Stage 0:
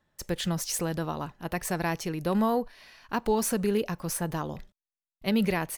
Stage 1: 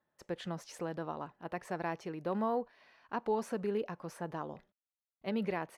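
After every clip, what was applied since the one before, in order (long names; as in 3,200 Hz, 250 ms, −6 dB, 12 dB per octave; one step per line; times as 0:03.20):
resonant band-pass 670 Hz, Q 0.51
level −5.5 dB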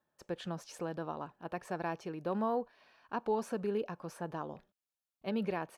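notch filter 2,000 Hz, Q 7.9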